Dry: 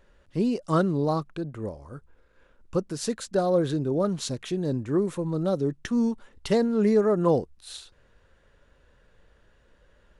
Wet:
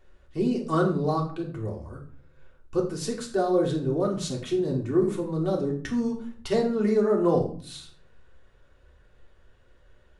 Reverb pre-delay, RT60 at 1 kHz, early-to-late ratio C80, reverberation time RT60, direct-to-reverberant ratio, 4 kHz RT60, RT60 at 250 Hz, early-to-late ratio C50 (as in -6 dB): 3 ms, 0.45 s, 13.0 dB, 0.45 s, -2.0 dB, 0.30 s, 0.75 s, 9.0 dB